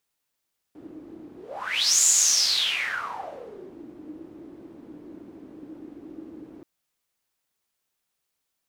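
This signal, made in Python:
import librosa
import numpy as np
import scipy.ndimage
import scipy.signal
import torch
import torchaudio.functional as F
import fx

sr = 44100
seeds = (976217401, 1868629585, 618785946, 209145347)

y = fx.whoosh(sr, seeds[0], length_s=5.88, peak_s=1.29, rise_s=0.73, fall_s=1.85, ends_hz=310.0, peak_hz=7100.0, q=8.4, swell_db=24.5)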